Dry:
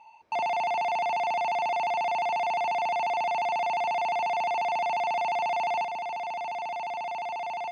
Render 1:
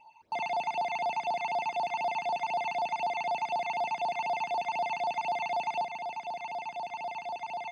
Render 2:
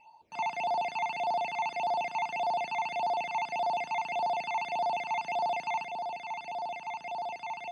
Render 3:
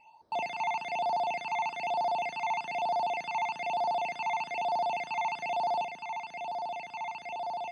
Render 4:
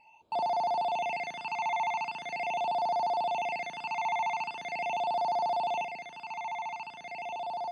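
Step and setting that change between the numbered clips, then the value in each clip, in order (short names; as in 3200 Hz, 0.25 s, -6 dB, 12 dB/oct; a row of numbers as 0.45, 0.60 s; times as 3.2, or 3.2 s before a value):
phaser, rate: 4, 1.7, 1.1, 0.42 Hz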